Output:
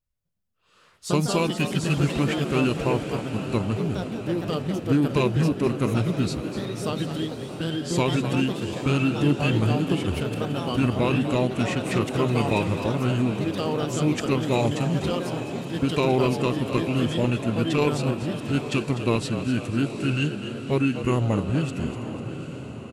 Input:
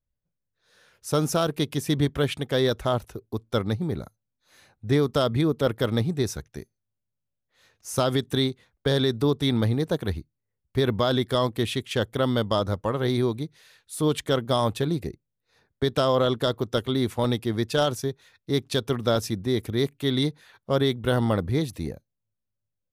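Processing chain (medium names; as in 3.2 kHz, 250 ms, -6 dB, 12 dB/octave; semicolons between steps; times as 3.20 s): echo that smears into a reverb 827 ms, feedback 53%, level -10.5 dB; formant shift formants -5 st; frequency-shifting echo 248 ms, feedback 46%, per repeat +73 Hz, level -11 dB; ever faster or slower copies 152 ms, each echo +3 st, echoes 2, each echo -6 dB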